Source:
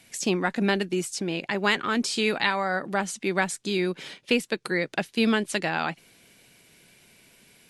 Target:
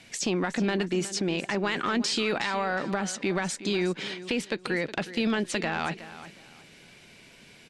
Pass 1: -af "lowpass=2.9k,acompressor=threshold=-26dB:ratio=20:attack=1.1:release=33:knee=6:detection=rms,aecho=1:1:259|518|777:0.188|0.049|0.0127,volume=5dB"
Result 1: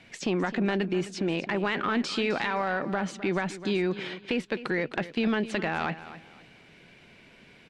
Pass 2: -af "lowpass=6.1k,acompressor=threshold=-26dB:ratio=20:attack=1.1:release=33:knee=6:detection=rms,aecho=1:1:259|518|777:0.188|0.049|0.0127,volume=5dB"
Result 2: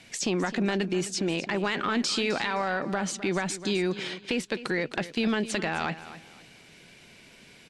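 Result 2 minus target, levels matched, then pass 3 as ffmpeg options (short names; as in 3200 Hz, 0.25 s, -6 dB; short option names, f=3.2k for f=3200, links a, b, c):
echo 0.106 s early
-af "lowpass=6.1k,acompressor=threshold=-26dB:ratio=20:attack=1.1:release=33:knee=6:detection=rms,aecho=1:1:365|730|1095:0.188|0.049|0.0127,volume=5dB"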